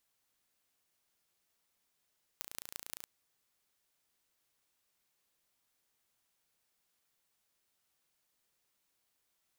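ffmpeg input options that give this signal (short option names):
-f lavfi -i "aevalsrc='0.251*eq(mod(n,1542),0)*(0.5+0.5*eq(mod(n,7710),0))':d=0.66:s=44100"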